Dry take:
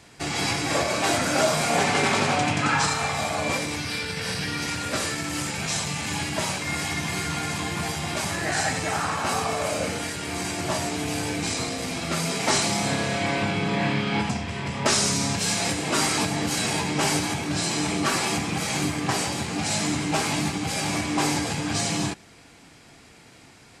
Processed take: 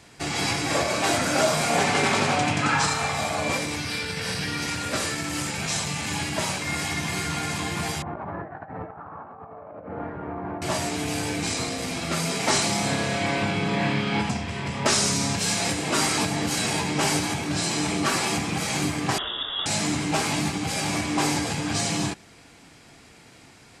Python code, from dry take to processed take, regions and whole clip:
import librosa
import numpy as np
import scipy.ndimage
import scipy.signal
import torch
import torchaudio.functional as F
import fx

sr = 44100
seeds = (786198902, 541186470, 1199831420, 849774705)

y = fx.chain(x, sr, fx.lowpass(hz=1200.0, slope=24),
    fx.low_shelf(hz=430.0, db=-5.5),
    fx.over_compress(threshold_db=-35.0, ratio=-0.5), at=(8.02, 10.62))
y = fx.chain(y, sr, fx.fixed_phaser(hz=2800.0, stages=4),
    fx.freq_invert(carrier_hz=3600), at=(19.18, 19.66))